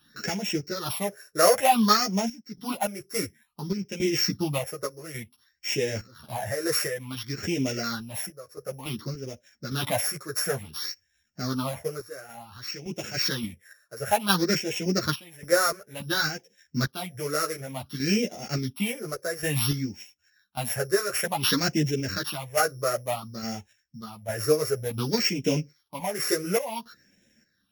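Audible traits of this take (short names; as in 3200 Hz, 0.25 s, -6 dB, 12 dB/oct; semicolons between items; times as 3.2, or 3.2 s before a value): a buzz of ramps at a fixed pitch in blocks of 8 samples; phasing stages 6, 0.56 Hz, lowest notch 220–1200 Hz; random-step tremolo, depth 90%; a shimmering, thickened sound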